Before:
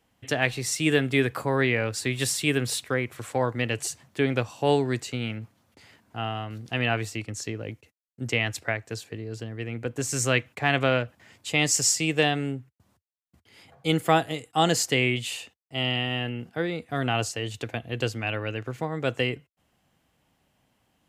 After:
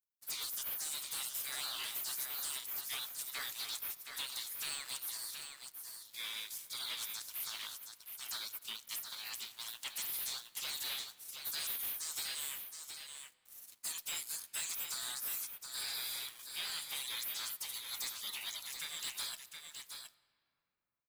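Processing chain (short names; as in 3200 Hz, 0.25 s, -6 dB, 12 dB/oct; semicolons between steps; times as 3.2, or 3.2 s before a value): HPF 390 Hz 24 dB/oct; spectral gate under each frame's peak -30 dB weak; tilt +4.5 dB/oct; compressor 6:1, threshold -43 dBFS, peak gain reduction 14.5 dB; sample leveller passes 5; echo 0.72 s -7 dB; on a send at -17.5 dB: reverb RT60 3.0 s, pre-delay 3 ms; on the sum: gain -7 dB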